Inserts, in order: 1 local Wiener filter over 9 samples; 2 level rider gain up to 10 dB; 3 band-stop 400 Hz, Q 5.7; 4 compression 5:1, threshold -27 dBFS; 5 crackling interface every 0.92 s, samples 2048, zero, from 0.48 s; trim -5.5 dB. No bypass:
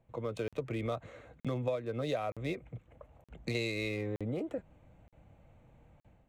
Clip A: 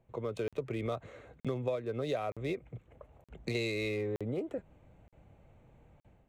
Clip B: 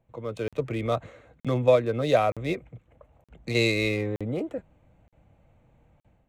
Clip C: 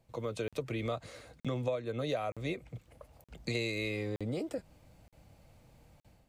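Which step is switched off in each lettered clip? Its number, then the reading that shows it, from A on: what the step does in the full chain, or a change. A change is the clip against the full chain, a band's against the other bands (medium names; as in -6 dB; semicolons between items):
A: 3, 500 Hz band +1.5 dB; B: 4, mean gain reduction 7.0 dB; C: 1, 8 kHz band +3.0 dB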